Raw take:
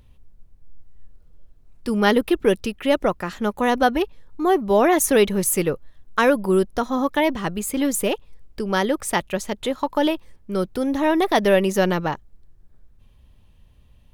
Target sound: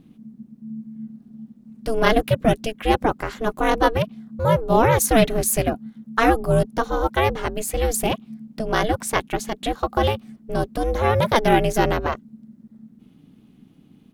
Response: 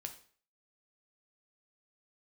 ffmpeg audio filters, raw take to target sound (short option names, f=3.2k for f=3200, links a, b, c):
-filter_complex "[0:a]aeval=exprs='val(0)*sin(2*PI*220*n/s)':c=same,asplit=2[a][b];[b]asetrate=29433,aresample=44100,atempo=1.49831,volume=-16dB[c];[a][c]amix=inputs=2:normalize=0,volume=3dB"